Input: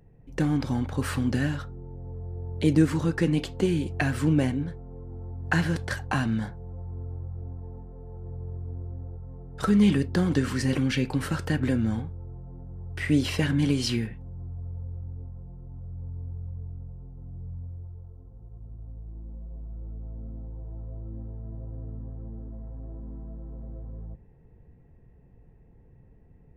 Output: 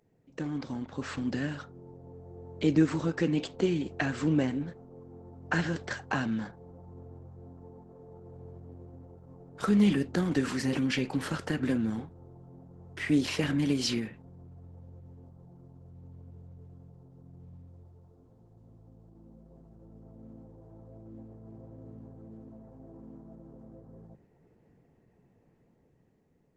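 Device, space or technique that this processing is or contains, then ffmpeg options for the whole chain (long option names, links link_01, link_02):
video call: -af "highpass=180,dynaudnorm=framelen=370:gausssize=7:maxgain=6dB,volume=-7dB" -ar 48000 -c:a libopus -b:a 12k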